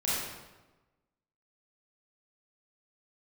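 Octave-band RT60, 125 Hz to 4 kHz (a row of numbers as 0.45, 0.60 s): 1.3, 1.2, 1.2, 1.1, 0.95, 0.85 s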